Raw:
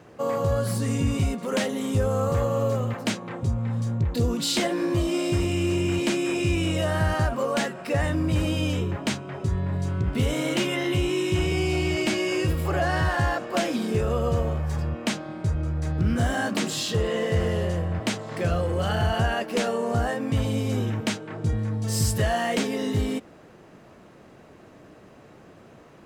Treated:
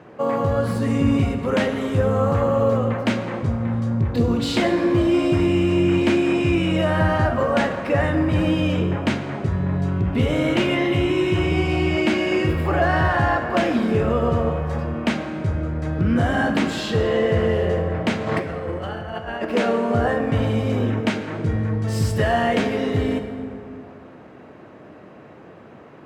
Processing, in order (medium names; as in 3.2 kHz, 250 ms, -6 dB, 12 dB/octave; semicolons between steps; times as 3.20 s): high-pass 170 Hz 6 dB/octave; tone controls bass +2 dB, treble -15 dB; 18.26–19.45 s: compressor with a negative ratio -32 dBFS, ratio -0.5; plate-style reverb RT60 2.6 s, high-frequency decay 0.5×, DRR 6 dB; trim +5.5 dB